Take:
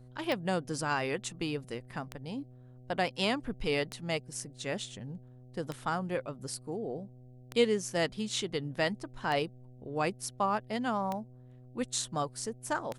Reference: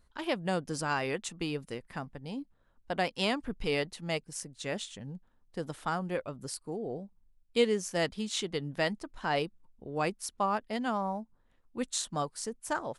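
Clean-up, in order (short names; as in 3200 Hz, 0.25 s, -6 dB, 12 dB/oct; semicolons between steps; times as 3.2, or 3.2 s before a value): de-click; de-hum 125.4 Hz, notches 6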